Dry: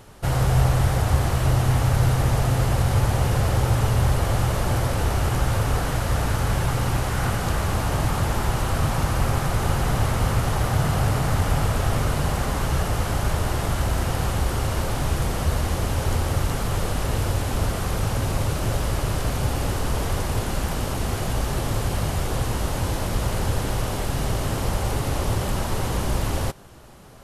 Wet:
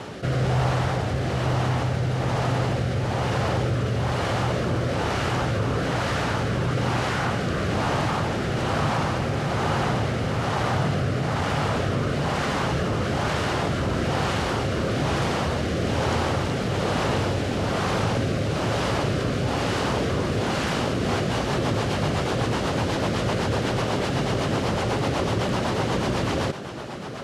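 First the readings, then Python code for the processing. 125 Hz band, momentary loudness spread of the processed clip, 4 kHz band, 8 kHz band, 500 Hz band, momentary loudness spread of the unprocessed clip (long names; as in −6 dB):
−3.0 dB, 2 LU, +2.0 dB, −6.0 dB, +3.5 dB, 5 LU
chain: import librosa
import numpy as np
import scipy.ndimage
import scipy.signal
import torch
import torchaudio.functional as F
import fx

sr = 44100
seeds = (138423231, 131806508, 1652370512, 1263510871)

y = fx.bandpass_edges(x, sr, low_hz=150.0, high_hz=4800.0)
y = fx.rider(y, sr, range_db=10, speed_s=2.0)
y = fx.rotary_switch(y, sr, hz=1.1, then_hz=8.0, switch_at_s=20.76)
y = fx.env_flatten(y, sr, amount_pct=50)
y = y * librosa.db_to_amplitude(1.5)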